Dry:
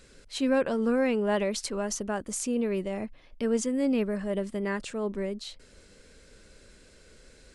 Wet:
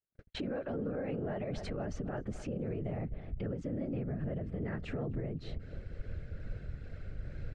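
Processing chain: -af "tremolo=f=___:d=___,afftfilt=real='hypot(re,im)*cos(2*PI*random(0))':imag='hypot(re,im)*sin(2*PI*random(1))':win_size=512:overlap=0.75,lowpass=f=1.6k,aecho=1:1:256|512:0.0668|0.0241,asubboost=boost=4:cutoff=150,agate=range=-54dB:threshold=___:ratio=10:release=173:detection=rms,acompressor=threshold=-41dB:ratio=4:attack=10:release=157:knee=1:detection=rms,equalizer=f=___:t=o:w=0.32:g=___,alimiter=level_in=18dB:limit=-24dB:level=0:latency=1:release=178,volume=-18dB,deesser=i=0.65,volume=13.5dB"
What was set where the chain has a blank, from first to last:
2.3, 0.31, -57dB, 1k, -11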